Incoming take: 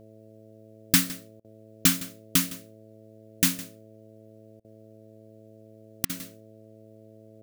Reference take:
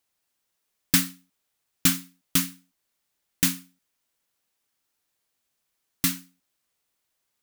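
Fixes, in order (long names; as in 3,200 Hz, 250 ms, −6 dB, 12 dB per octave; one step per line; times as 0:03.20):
hum removal 109 Hz, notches 6
repair the gap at 0:01.40/0:04.60/0:06.05, 44 ms
echo removal 160 ms −18 dB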